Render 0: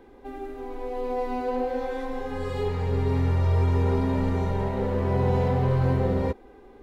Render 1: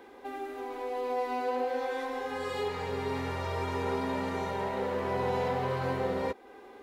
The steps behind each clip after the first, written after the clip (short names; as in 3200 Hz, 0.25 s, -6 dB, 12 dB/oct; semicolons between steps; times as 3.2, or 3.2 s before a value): HPF 800 Hz 6 dB/oct; in parallel at +0.5 dB: compressor, threshold -44 dBFS, peak gain reduction 15 dB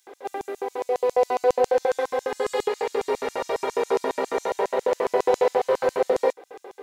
LFO high-pass square 7.3 Hz 460–6800 Hz; gain +6.5 dB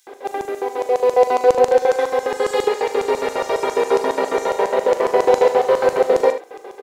tapped delay 40/77 ms -12.5/-11 dB; gain +6 dB